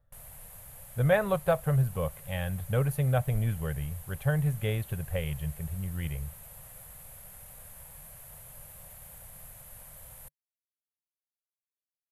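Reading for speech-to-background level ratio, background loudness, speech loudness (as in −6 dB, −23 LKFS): 16.0 dB, −46.5 LKFS, −30.5 LKFS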